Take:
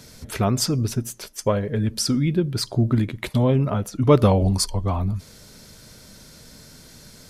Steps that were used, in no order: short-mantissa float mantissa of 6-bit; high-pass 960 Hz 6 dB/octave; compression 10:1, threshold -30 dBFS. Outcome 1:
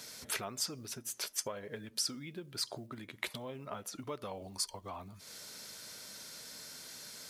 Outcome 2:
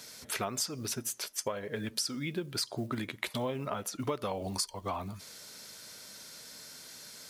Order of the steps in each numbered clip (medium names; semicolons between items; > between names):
short-mantissa float > compression > high-pass; short-mantissa float > high-pass > compression